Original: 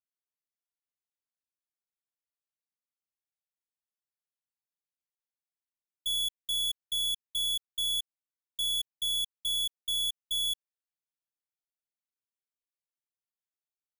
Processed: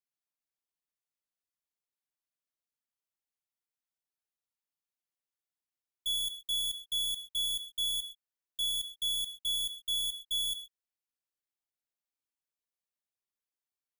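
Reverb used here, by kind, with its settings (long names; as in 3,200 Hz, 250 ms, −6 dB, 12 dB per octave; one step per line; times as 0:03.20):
reverb whose tail is shaped and stops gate 150 ms flat, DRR 8.5 dB
level −2.5 dB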